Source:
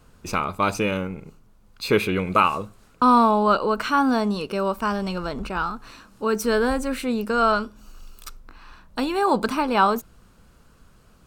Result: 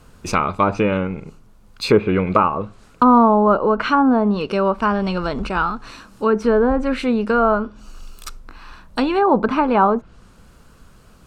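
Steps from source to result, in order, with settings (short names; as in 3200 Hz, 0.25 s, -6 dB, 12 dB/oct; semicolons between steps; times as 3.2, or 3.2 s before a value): treble ducked by the level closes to 1000 Hz, closed at -16.5 dBFS; gain +6 dB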